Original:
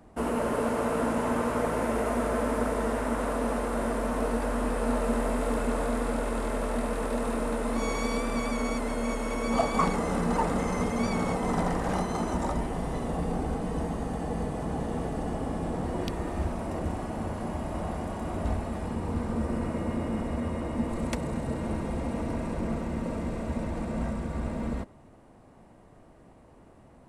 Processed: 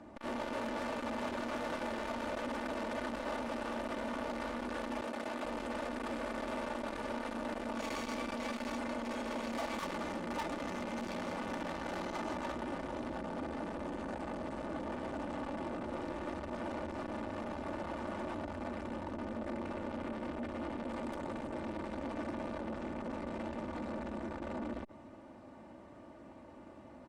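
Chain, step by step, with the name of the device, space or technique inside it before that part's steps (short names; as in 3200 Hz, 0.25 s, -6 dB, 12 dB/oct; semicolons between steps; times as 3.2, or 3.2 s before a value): valve radio (BPF 100–5500 Hz; tube stage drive 38 dB, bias 0.6; core saturation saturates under 510 Hz); comb 3.4 ms, depth 58%; 5.01–5.45 HPF 180 Hz 6 dB/oct; gain +4 dB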